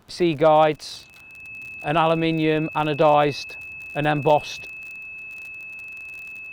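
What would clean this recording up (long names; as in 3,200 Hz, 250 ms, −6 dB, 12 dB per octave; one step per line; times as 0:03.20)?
clipped peaks rebuilt −7 dBFS
click removal
notch filter 2,600 Hz, Q 30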